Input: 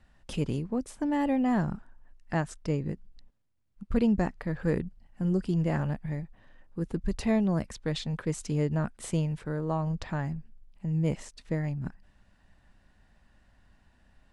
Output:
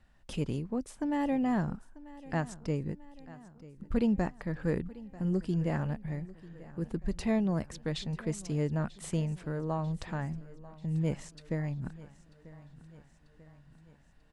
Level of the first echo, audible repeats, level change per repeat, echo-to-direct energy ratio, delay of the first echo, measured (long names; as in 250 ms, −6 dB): −19.0 dB, 4, −5.0 dB, −17.5 dB, 941 ms